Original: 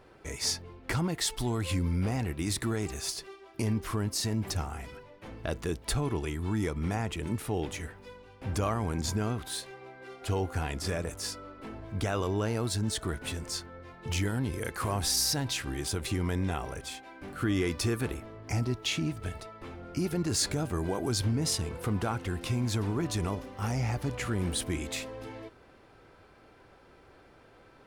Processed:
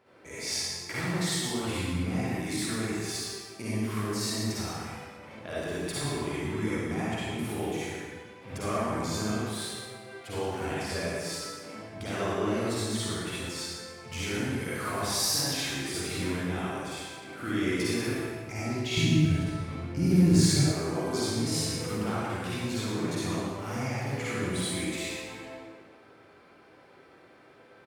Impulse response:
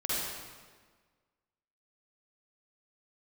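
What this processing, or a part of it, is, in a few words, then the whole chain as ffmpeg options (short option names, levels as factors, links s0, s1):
PA in a hall: -filter_complex "[0:a]highpass=140,equalizer=f=2200:t=o:w=0.45:g=4.5,aecho=1:1:114:0.355[s0];[1:a]atrim=start_sample=2205[s1];[s0][s1]afir=irnorm=-1:irlink=0,asettb=1/sr,asplit=3[s2][s3][s4];[s2]atrim=end=18.974[s5];[s3]atrim=start=18.97:end=20.72,asetpts=PTS-STARTPTS,afade=t=in:d=0.004:c=qsin,afade=t=out:st=1.746:d=0.004:c=qsin,bass=f=250:g=14,treble=f=4000:g=2[s6];[s4]atrim=start=20.716[s7];[s5][s6]acrossfade=d=0.004:c1=hsin:c2=qsin[s8];[s8][s7]acrossfade=d=0.004:c1=qsin:c2=hsin,volume=0.473"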